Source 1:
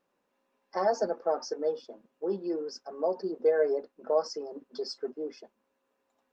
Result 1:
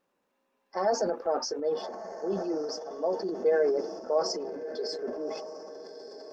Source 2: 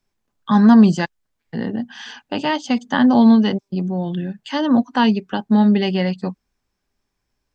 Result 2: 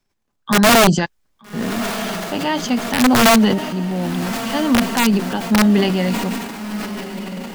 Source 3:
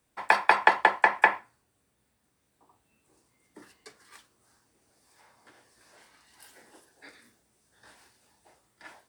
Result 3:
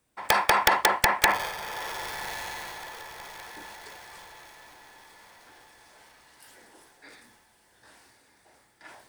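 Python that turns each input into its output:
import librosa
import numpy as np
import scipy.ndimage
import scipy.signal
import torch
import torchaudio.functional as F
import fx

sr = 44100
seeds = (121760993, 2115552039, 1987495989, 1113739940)

y = (np.mod(10.0 ** (7.0 / 20.0) * x + 1.0, 2.0) - 1.0) / 10.0 ** (7.0 / 20.0)
y = fx.echo_diffused(y, sr, ms=1242, feedback_pct=42, wet_db=-12.0)
y = fx.transient(y, sr, attack_db=-1, sustain_db=8)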